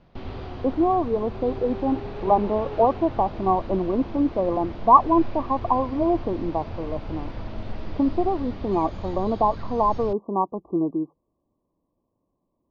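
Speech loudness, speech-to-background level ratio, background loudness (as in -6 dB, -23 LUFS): -23.5 LUFS, 13.0 dB, -36.5 LUFS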